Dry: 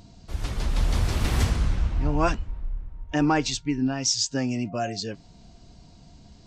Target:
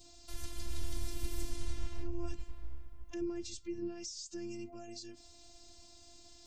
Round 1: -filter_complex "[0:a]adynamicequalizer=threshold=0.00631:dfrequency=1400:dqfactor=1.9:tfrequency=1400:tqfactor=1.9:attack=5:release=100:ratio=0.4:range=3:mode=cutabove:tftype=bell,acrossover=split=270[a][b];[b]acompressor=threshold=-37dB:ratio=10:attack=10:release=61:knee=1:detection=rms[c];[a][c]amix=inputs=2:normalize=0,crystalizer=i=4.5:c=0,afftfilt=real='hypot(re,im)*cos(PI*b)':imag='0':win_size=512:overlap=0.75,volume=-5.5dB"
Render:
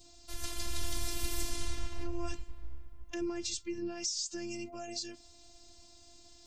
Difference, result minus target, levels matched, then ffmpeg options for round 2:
compressor: peak gain reduction -9.5 dB
-filter_complex "[0:a]adynamicequalizer=threshold=0.00631:dfrequency=1400:dqfactor=1.9:tfrequency=1400:tqfactor=1.9:attack=5:release=100:ratio=0.4:range=3:mode=cutabove:tftype=bell,acrossover=split=270[a][b];[b]acompressor=threshold=-47.5dB:ratio=10:attack=10:release=61:knee=1:detection=rms[c];[a][c]amix=inputs=2:normalize=0,crystalizer=i=4.5:c=0,afftfilt=real='hypot(re,im)*cos(PI*b)':imag='0':win_size=512:overlap=0.75,volume=-5.5dB"

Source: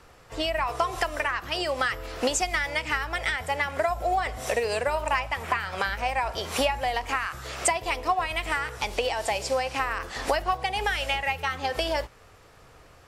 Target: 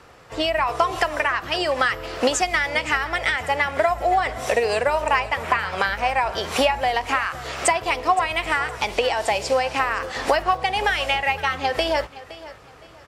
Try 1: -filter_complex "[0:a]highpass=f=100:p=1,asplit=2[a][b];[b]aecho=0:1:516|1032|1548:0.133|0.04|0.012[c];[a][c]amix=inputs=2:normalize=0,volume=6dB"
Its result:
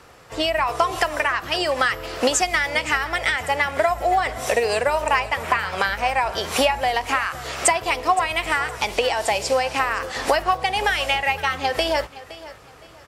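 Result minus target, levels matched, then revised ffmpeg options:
8000 Hz band +3.5 dB
-filter_complex "[0:a]highpass=f=100:p=1,highshelf=f=7.2k:g=-8,asplit=2[a][b];[b]aecho=0:1:516|1032|1548:0.133|0.04|0.012[c];[a][c]amix=inputs=2:normalize=0,volume=6dB"

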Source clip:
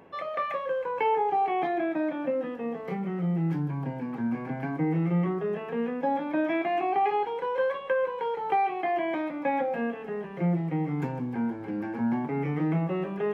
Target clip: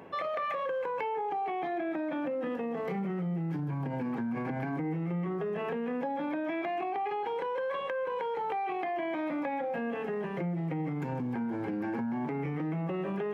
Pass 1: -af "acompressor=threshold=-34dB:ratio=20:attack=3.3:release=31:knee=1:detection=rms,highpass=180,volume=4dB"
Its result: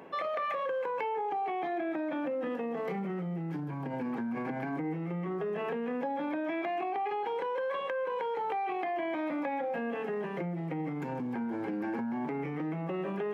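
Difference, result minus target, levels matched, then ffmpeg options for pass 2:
125 Hz band -3.5 dB
-af "acompressor=threshold=-34dB:ratio=20:attack=3.3:release=31:knee=1:detection=rms,highpass=68,volume=4dB"

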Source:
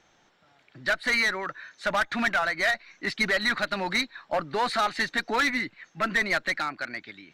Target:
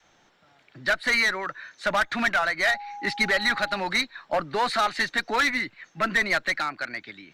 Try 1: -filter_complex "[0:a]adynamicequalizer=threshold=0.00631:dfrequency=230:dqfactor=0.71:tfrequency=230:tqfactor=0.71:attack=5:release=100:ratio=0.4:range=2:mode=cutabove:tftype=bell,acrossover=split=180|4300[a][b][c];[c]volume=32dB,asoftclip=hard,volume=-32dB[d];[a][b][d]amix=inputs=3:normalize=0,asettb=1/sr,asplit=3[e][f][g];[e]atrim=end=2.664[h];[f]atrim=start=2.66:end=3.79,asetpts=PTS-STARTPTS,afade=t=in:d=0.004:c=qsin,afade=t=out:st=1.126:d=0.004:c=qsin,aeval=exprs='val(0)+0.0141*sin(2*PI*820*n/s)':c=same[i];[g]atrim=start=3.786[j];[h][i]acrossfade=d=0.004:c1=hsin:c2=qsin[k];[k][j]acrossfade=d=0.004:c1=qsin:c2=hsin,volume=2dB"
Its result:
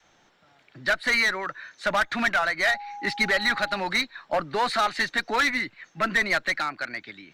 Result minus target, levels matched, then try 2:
overloaded stage: distortion +16 dB
-filter_complex "[0:a]adynamicequalizer=threshold=0.00631:dfrequency=230:dqfactor=0.71:tfrequency=230:tqfactor=0.71:attack=5:release=100:ratio=0.4:range=2:mode=cutabove:tftype=bell,acrossover=split=180|4300[a][b][c];[c]volume=26dB,asoftclip=hard,volume=-26dB[d];[a][b][d]amix=inputs=3:normalize=0,asettb=1/sr,asplit=3[e][f][g];[e]atrim=end=2.664[h];[f]atrim=start=2.66:end=3.79,asetpts=PTS-STARTPTS,afade=t=in:d=0.004:c=qsin,afade=t=out:st=1.126:d=0.004:c=qsin,aeval=exprs='val(0)+0.0141*sin(2*PI*820*n/s)':c=same[i];[g]atrim=start=3.786[j];[h][i]acrossfade=d=0.004:c1=hsin:c2=qsin[k];[k][j]acrossfade=d=0.004:c1=qsin:c2=hsin,volume=2dB"

